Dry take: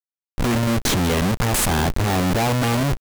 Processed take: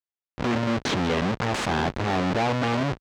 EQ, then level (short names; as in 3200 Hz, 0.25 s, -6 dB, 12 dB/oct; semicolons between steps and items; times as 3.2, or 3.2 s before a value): HPF 55 Hz; air absorption 150 m; low shelf 130 Hz -11 dB; -1.5 dB